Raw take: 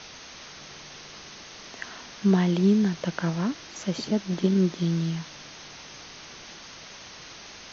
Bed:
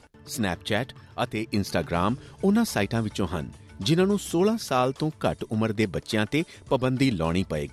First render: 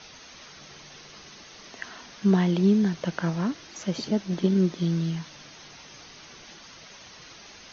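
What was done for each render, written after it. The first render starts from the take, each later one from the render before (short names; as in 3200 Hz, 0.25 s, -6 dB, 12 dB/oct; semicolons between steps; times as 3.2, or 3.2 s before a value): denoiser 6 dB, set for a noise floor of -45 dBFS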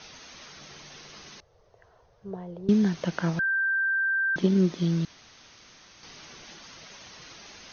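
1.4–2.69 EQ curve 110 Hz 0 dB, 250 Hz -30 dB, 480 Hz -4 dB, 700 Hz -10 dB, 2400 Hz -29 dB; 3.39–4.36 bleep 1570 Hz -22.5 dBFS; 5.05–6.03 room tone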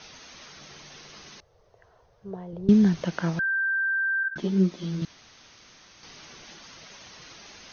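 2.53–3.03 low shelf 160 Hz +11 dB; 4.23–5.02 ensemble effect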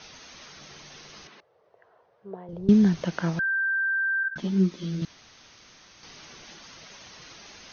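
1.27–2.49 BPF 250–2700 Hz; 4.22–5.01 bell 270 Hz -> 1100 Hz -9.5 dB 0.46 oct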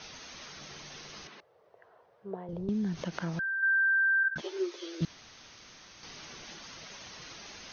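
2.48–3.63 compressor 3:1, threshold -33 dBFS; 4.41–5.01 steep high-pass 330 Hz 72 dB/oct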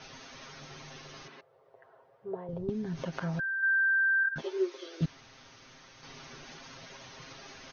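high shelf 2700 Hz -8 dB; comb 7.5 ms, depth 71%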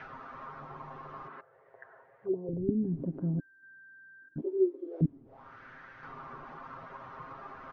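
companded quantiser 8-bit; envelope low-pass 300–2100 Hz down, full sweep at -34.5 dBFS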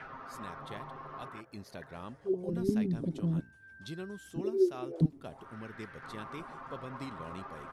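add bed -20.5 dB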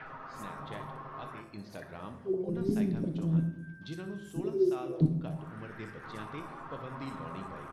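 bands offset in time lows, highs 60 ms, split 5300 Hz; shoebox room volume 270 m³, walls mixed, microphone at 0.57 m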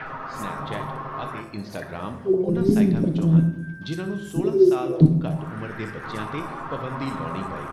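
gain +11.5 dB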